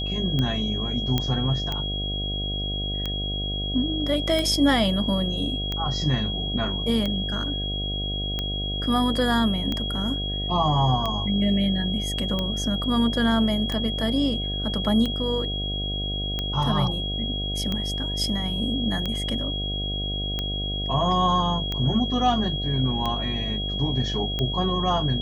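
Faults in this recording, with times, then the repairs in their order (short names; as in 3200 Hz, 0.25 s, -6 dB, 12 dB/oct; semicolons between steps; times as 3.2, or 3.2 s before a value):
buzz 50 Hz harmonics 15 -30 dBFS
tick 45 rpm -14 dBFS
tone 3300 Hz -29 dBFS
1.18 pop -9 dBFS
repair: de-click; de-hum 50 Hz, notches 15; notch 3300 Hz, Q 30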